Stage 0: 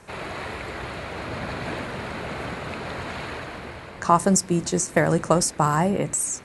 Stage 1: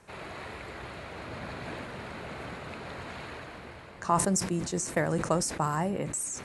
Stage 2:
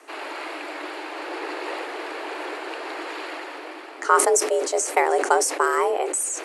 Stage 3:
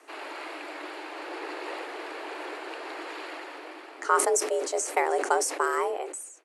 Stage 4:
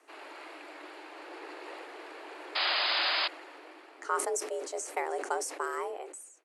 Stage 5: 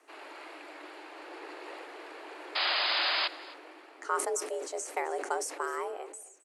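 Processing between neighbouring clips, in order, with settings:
level that may fall only so fast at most 73 dB per second; level −8.5 dB
frequency shifter +240 Hz; level +8 dB
fade-out on the ending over 0.67 s; level −5.5 dB
sound drawn into the spectrogram noise, 0:02.55–0:03.28, 550–5,100 Hz −21 dBFS; level −8 dB
single-tap delay 263 ms −20.5 dB

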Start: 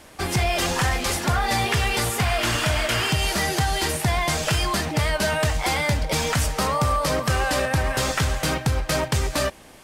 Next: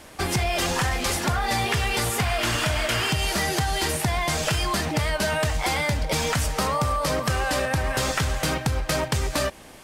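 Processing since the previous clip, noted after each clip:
downward compressor, threshold −22 dBFS, peak gain reduction 5 dB
level +1.5 dB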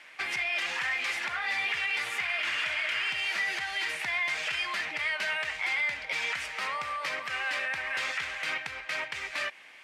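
resonant band-pass 2,200 Hz, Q 2.9
brickwall limiter −26 dBFS, peak gain reduction 7.5 dB
level +4.5 dB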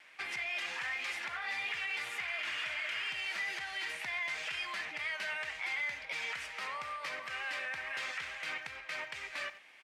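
far-end echo of a speakerphone 90 ms, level −13 dB
tape wow and flutter 25 cents
level −7 dB

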